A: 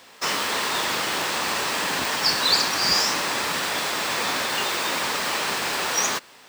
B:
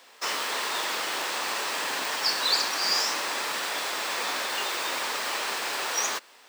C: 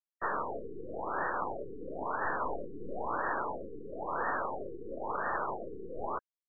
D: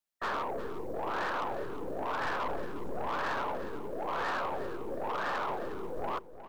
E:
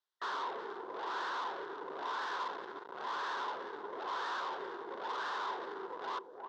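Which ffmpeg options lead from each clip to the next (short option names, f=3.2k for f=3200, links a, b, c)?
-af "highpass=350,volume=-4.5dB"
-af "acrusher=bits=5:mix=0:aa=0.000001,aeval=exprs='0.266*(cos(1*acos(clip(val(0)/0.266,-1,1)))-cos(1*PI/2))+0.015*(cos(8*acos(clip(val(0)/0.266,-1,1)))-cos(8*PI/2))':c=same,afftfilt=real='re*lt(b*sr/1024,470*pow(1900/470,0.5+0.5*sin(2*PI*0.99*pts/sr)))':imag='im*lt(b*sr/1024,470*pow(1900/470,0.5+0.5*sin(2*PI*0.99*pts/sr)))':win_size=1024:overlap=0.75"
-af "acrusher=bits=7:mode=log:mix=0:aa=0.000001,asoftclip=type=tanh:threshold=-34.5dB,aecho=1:1:359|718|1077:0.224|0.0515|0.0118,volume=5dB"
-af "asoftclip=type=hard:threshold=-40dB,highpass=390,equalizer=f=390:t=q:w=4:g=8,equalizer=f=610:t=q:w=4:g=-4,equalizer=f=1k:t=q:w=4:g=9,equalizer=f=1.5k:t=q:w=4:g=6,equalizer=f=2.4k:t=q:w=4:g=-8,equalizer=f=3.6k:t=q:w=4:g=7,lowpass=f=5.7k:w=0.5412,lowpass=f=5.7k:w=1.3066,volume=-1dB"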